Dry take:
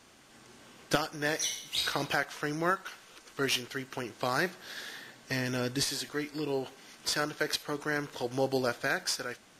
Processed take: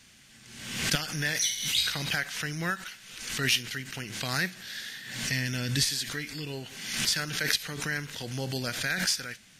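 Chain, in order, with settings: high-order bell 610 Hz -13 dB 2.5 oct; swell ahead of each attack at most 56 dB/s; trim +4.5 dB

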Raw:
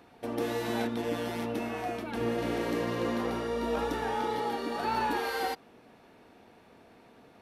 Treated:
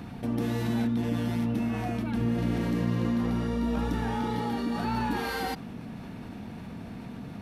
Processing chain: resonant low shelf 280 Hz +12.5 dB, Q 1.5; level flattener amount 50%; trim -5 dB

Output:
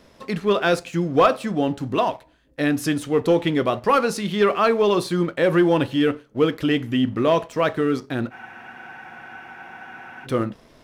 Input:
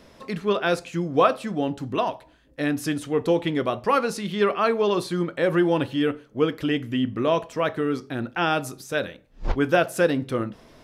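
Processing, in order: waveshaping leveller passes 1; spectral freeze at 8.34 s, 1.91 s

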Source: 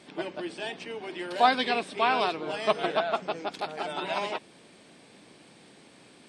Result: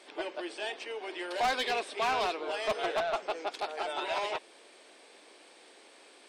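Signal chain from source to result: high-pass 370 Hz 24 dB/octave; saturation -24.5 dBFS, distortion -8 dB

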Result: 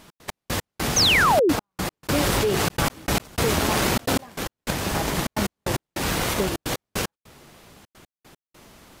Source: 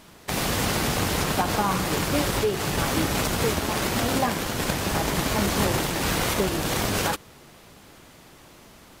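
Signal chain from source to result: trance gate "x.x..x..xxxxx" 151 bpm -60 dB; 0.96–1.53 s: painted sound fall 260–6700 Hz -18 dBFS; 2.03–4.37 s: level flattener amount 70%

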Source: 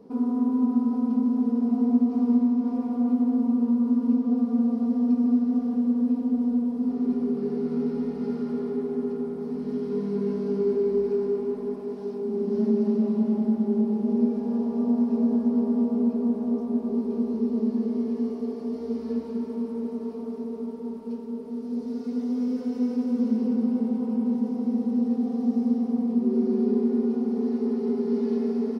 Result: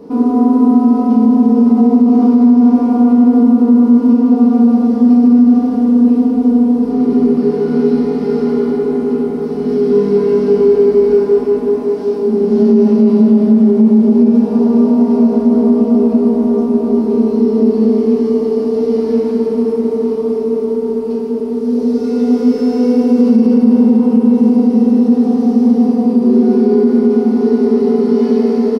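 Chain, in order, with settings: doubling 22 ms -11 dB; FDN reverb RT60 1.4 s, low-frequency decay 0.9×, high-frequency decay 0.9×, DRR 1 dB; loudness maximiser +14.5 dB; trim -1 dB

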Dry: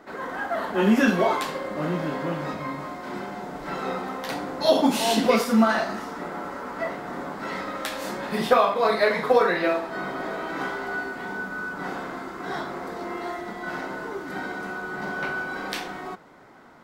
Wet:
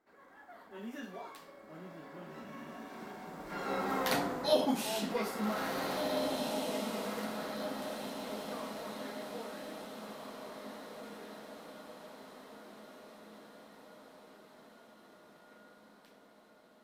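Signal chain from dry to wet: Doppler pass-by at 4.06 s, 15 m/s, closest 2.7 m; treble shelf 11 kHz +11 dB; on a send: echo that smears into a reverb 1795 ms, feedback 53%, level -3 dB

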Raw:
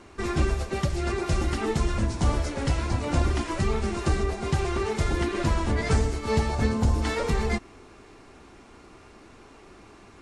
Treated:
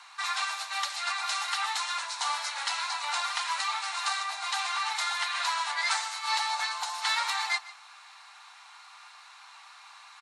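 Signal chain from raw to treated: steep high-pass 830 Hz 48 dB/octave; peaking EQ 4 kHz +9.5 dB 0.29 oct; delay 149 ms -18.5 dB; on a send at -15 dB: reverberation RT60 0.15 s, pre-delay 3 ms; on the sum: trim +3.5 dB

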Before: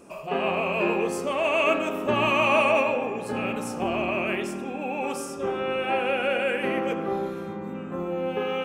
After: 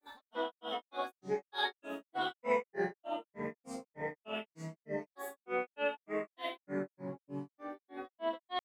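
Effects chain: chord resonator G3 sus4, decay 0.33 s; granulator 218 ms, grains 3.3 per s, pitch spread up and down by 7 st; trim +6 dB

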